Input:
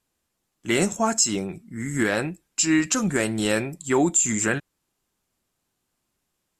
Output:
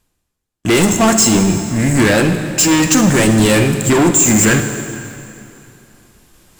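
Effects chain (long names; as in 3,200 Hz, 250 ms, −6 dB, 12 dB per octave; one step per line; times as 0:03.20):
low-shelf EQ 100 Hz +11.5 dB
leveller curve on the samples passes 5
reversed playback
upward compression, threshold −21 dBFS
reversed playback
dense smooth reverb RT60 2.7 s, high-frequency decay 0.9×, DRR 6.5 dB
level −1 dB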